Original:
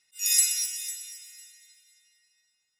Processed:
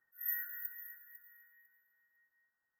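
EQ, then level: brick-wall FIR band-stop 1900–13000 Hz; tilt shelf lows -7 dB, about 1400 Hz; high shelf 3000 Hz -10 dB; +4.0 dB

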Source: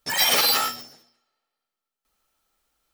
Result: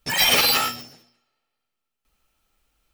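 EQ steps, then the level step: low shelf 220 Hz +12 dB; bell 2600 Hz +6.5 dB 0.54 oct; 0.0 dB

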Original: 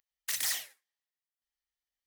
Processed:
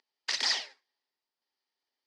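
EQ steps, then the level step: speaker cabinet 250–5200 Hz, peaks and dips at 260 Hz +9 dB, 390 Hz +9 dB, 900 Hz +8 dB, 4800 Hz +9 dB; bell 600 Hz +2.5 dB; +4.5 dB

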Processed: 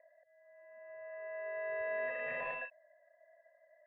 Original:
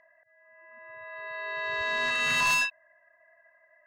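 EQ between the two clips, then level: vocal tract filter e; bell 720 Hz +13 dB 0.86 oct; +1.5 dB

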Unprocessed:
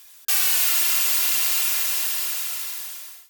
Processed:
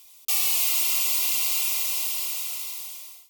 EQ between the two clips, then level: Butterworth band-stop 1600 Hz, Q 1.9; bell 63 Hz +9 dB 0.2 oct; -3.0 dB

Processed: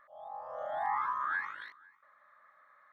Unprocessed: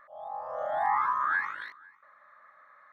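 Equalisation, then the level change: bell 3200 Hz +4 dB 0.43 oct; -6.0 dB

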